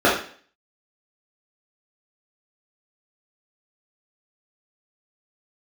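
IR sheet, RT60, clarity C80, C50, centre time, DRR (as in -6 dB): 0.45 s, 10.0 dB, 5.0 dB, 38 ms, -7.0 dB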